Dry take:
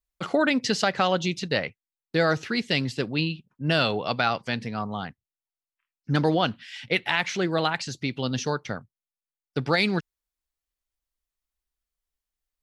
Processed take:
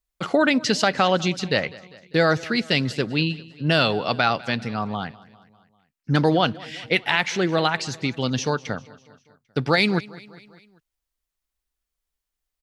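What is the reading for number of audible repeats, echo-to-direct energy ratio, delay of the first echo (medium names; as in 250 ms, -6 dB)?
3, -19.5 dB, 199 ms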